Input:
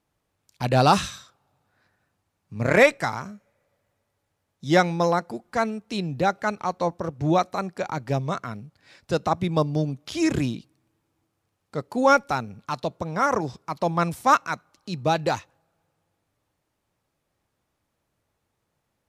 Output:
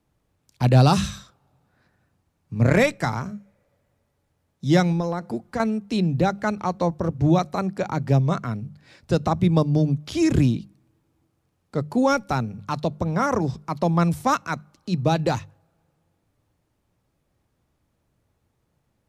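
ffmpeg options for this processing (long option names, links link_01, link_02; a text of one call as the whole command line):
ffmpeg -i in.wav -filter_complex "[0:a]asettb=1/sr,asplit=3[link_01][link_02][link_03];[link_01]atrim=end=4.924[link_04];[link_02]atrim=start=4.92:end=5.6,asetpts=PTS-STARTPTS,afade=type=in:duration=0.004:curve=qsin,afade=type=out:start_time=0.676:duration=0.004:curve=qsin,acompressor=threshold=-26dB:ratio=6:attack=3.2:release=140:knee=1:detection=peak[link_05];[link_03]atrim=start=5.596[link_06];[link_04][link_05]acrossfade=duration=0.004:curve1=hsin:curve2=qsin[link_07];[link_07][link_06]acrossfade=duration=0.004:curve1=qsin:curve2=hsin,lowshelf=frequency=320:gain=11,bandreject=frequency=50:width_type=h:width=6,bandreject=frequency=100:width_type=h:width=6,bandreject=frequency=150:width_type=h:width=6,bandreject=frequency=200:width_type=h:width=6,acrossover=split=190|3000[link_08][link_09][link_10];[link_09]acompressor=threshold=-19dB:ratio=2.5[link_11];[link_08][link_11][link_10]amix=inputs=3:normalize=0" out.wav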